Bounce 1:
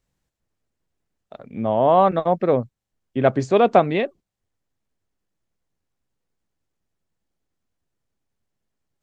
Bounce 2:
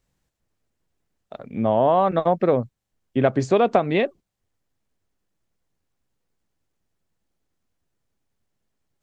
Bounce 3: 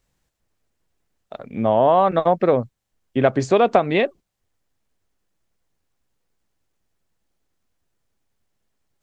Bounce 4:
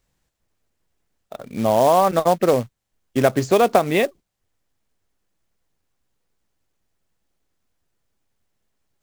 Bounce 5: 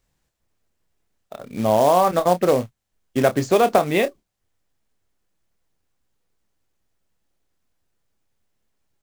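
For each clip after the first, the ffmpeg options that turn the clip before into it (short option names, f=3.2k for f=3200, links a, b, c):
-af "acompressor=threshold=-16dB:ratio=10,volume=2.5dB"
-af "equalizer=f=160:t=o:w=2.8:g=-3.5,volume=3.5dB"
-af "acrusher=bits=4:mode=log:mix=0:aa=0.000001"
-filter_complex "[0:a]asplit=2[a][b];[b]adelay=28,volume=-10.5dB[c];[a][c]amix=inputs=2:normalize=0,volume=-1dB"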